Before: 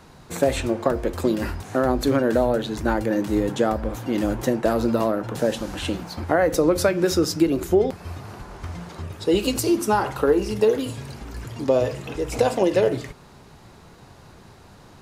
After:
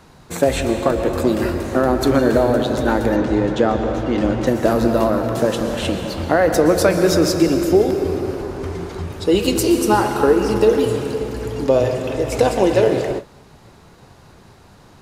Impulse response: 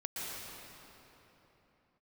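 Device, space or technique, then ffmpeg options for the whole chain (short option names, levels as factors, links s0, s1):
keyed gated reverb: -filter_complex "[0:a]asplit=3[s0][s1][s2];[1:a]atrim=start_sample=2205[s3];[s1][s3]afir=irnorm=-1:irlink=0[s4];[s2]apad=whole_len=662178[s5];[s4][s5]sidechaingate=range=0.0224:threshold=0.00794:ratio=16:detection=peak,volume=0.631[s6];[s0][s6]amix=inputs=2:normalize=0,asettb=1/sr,asplit=3[s7][s8][s9];[s7]atrim=end=3.164[s10];[s8]atrim=start=3.16:end=4.47,asetpts=PTS-STARTPTS,afade=t=in:d=0.004:c=qsin,afade=t=out:st=1.306:d=0.004:c=qsin,lowpass=5000[s11];[s9]atrim=start=4.466[s12];[s10][s11]acrossfade=d=0.004:c1=hsin:c2=qsin[s13];[s13][s12]acrossfade=d=0.004:c1=qsin:c2=hsin,volume=1.12"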